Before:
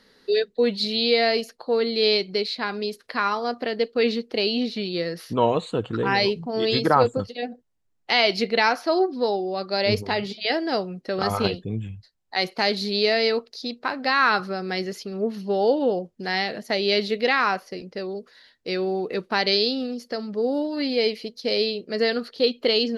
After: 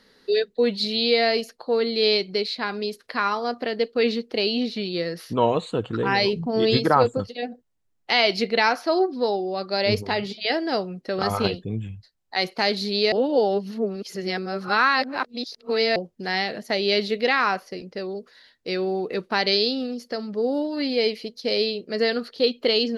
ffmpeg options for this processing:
ffmpeg -i in.wav -filter_complex "[0:a]asettb=1/sr,asplit=3[link_01][link_02][link_03];[link_01]atrim=end=6.334[link_04];[link_02]atrim=start=6.33:end=6.77,asetpts=PTS-STARTPTS,afade=type=in:duration=0.004:curve=qsin,afade=type=out:start_time=0.436:duration=0.004:curve=qsin,lowshelf=frequency=370:gain=7[link_05];[link_03]atrim=start=6.766[link_06];[link_04][link_05]acrossfade=duration=0.004:curve1=hsin:curve2=qsin[link_07];[link_07][link_06]acrossfade=duration=0.004:curve1=qsin:curve2=hsin,asplit=3[link_08][link_09][link_10];[link_08]atrim=end=13.122[link_11];[link_09]atrim=start=13.118:end=15.962,asetpts=PTS-STARTPTS,areverse[link_12];[link_10]atrim=start=15.958[link_13];[link_11][link_12]acrossfade=duration=0.004:curve1=hsin:curve2=hsin[link_14];[link_14][link_13]acrossfade=duration=0.004:curve1=hsin:curve2=hsin" out.wav

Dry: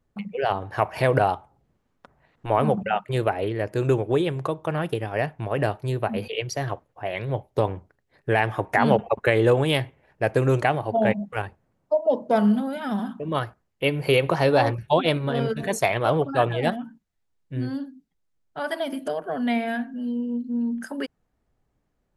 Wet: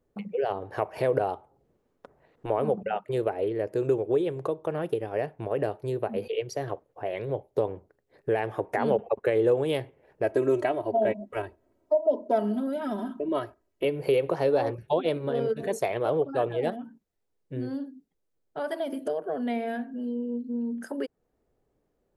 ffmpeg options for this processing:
ffmpeg -i in.wav -filter_complex "[0:a]asettb=1/sr,asplit=3[link_01][link_02][link_03];[link_01]atrim=end=10.244[link_04];[link_02]atrim=start=10.24:end=13.85,asetpts=PTS-STARTPTS,afade=type=in:duration=0.004:curve=qsin,afade=type=out:start_time=3.606:duration=0.004:curve=qsin,aecho=1:1:3.1:0.8,atrim=end_sample=159201[link_05];[link_03]atrim=start=13.846[link_06];[link_04][link_05]acrossfade=duration=0.004:curve1=hsin:curve2=qsin[link_07];[link_07][link_06]acrossfade=duration=0.004:curve1=qsin:curve2=hsin,equalizer=frequency=440:width_type=o:width=1.3:gain=12.5,acompressor=threshold=-31dB:ratio=1.5,highshelf=frequency=7900:gain=4,volume=-5dB" out.wav

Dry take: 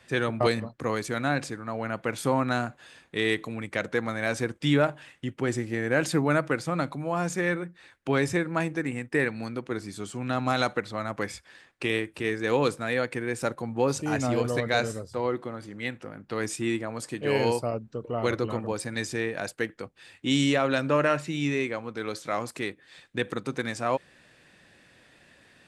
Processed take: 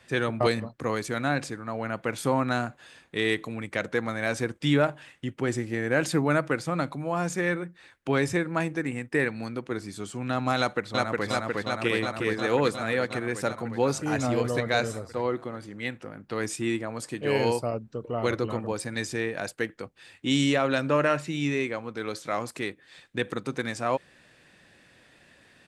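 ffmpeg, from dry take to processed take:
ffmpeg -i in.wav -filter_complex "[0:a]asplit=2[link_01][link_02];[link_02]afade=type=in:start_time=10.58:duration=0.01,afade=type=out:start_time=11.26:duration=0.01,aecho=0:1:360|720|1080|1440|1800|2160|2520|2880|3240|3600|3960|4320:0.891251|0.713001|0.570401|0.45632|0.365056|0.292045|0.233636|0.186909|0.149527|0.119622|0.0956973|0.0765579[link_03];[link_01][link_03]amix=inputs=2:normalize=0" out.wav

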